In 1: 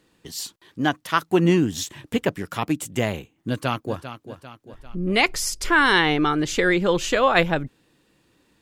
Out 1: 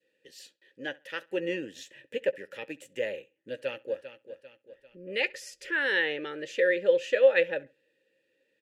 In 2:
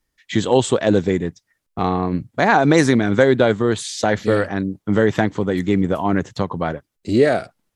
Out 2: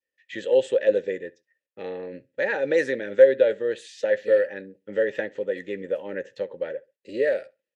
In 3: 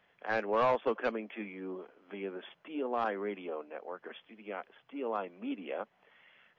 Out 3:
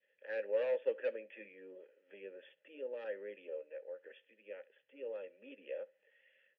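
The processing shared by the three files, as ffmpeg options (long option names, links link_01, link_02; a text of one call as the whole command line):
ffmpeg -i in.wav -filter_complex "[0:a]asplit=3[link_01][link_02][link_03];[link_01]bandpass=frequency=530:width_type=q:width=8,volume=0dB[link_04];[link_02]bandpass=frequency=1840:width_type=q:width=8,volume=-6dB[link_05];[link_03]bandpass=frequency=2480:width_type=q:width=8,volume=-9dB[link_06];[link_04][link_05][link_06]amix=inputs=3:normalize=0,crystalizer=i=2:c=0,asuperstop=centerf=700:order=4:qfactor=4.8,asplit=2[link_07][link_08];[link_08]adelay=15,volume=-14dB[link_09];[link_07][link_09]amix=inputs=2:normalize=0,asplit=2[link_10][link_11];[link_11]adelay=67,lowpass=frequency=4200:poles=1,volume=-23dB,asplit=2[link_12][link_13];[link_13]adelay=67,lowpass=frequency=4200:poles=1,volume=0.26[link_14];[link_10][link_12][link_14]amix=inputs=3:normalize=0,adynamicequalizer=threshold=0.0112:dfrequency=930:dqfactor=0.76:tfrequency=930:tqfactor=0.76:attack=5:release=100:ratio=0.375:range=2:mode=boostabove:tftype=bell" out.wav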